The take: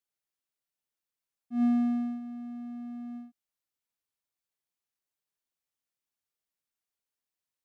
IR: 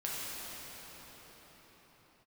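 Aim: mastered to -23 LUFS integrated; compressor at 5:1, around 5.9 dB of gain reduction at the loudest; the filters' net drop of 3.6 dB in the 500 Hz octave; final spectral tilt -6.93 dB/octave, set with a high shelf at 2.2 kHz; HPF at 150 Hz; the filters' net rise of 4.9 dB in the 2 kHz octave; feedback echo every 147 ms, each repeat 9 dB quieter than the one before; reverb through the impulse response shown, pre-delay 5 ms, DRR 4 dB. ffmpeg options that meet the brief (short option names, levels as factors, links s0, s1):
-filter_complex "[0:a]highpass=150,equalizer=f=500:t=o:g=-8.5,equalizer=f=2000:t=o:g=8.5,highshelf=f=2200:g=-4,acompressor=threshold=0.0282:ratio=5,aecho=1:1:147|294|441|588:0.355|0.124|0.0435|0.0152,asplit=2[s0][s1];[1:a]atrim=start_sample=2205,adelay=5[s2];[s1][s2]afir=irnorm=-1:irlink=0,volume=0.355[s3];[s0][s3]amix=inputs=2:normalize=0,volume=4.22"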